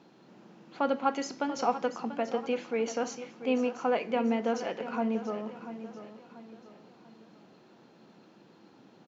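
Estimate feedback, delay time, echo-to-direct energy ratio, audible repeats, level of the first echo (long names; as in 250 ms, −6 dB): 40%, 688 ms, −11.5 dB, 3, −12.5 dB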